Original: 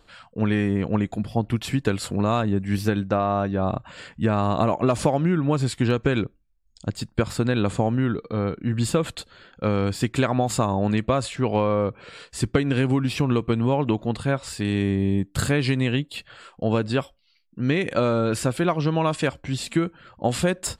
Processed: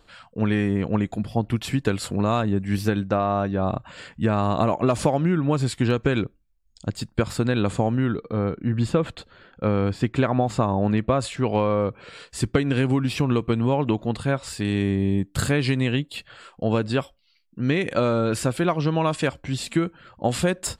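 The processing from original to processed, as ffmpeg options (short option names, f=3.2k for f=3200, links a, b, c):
-filter_complex "[0:a]asettb=1/sr,asplit=3[a][b][c];[a]atrim=end=8.204[d];[b]atrim=start=8.2:end=11.2,asetpts=PTS-STARTPTS,afade=t=in:d=0.004:c=qsin,afade=t=out:st=2.996:d=0.004:c=qsin,aemphasis=mode=reproduction:type=75fm[e];[c]atrim=start=11.196[f];[d][e]acrossfade=d=0.004:c1=hsin:c2=qsin[g];[g][f]acrossfade=d=0.004:c1=qsin:c2=hsin"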